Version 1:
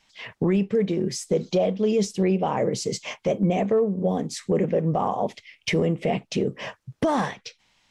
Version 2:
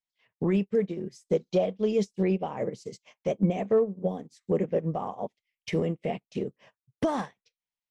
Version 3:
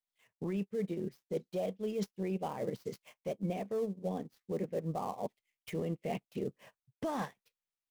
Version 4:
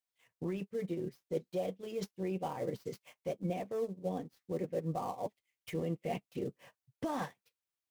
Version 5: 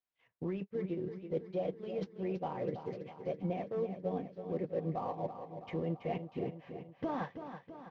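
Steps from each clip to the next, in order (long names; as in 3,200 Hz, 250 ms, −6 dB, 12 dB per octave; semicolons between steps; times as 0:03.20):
expander for the loud parts 2.5 to 1, over −41 dBFS
gap after every zero crossing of 0.067 ms; reversed playback; downward compressor 6 to 1, threshold −33 dBFS, peak gain reduction 13.5 dB; reversed playback
notch comb filter 210 Hz; level +1 dB
Gaussian smoothing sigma 2.3 samples; repeating echo 328 ms, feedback 58%, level −9.5 dB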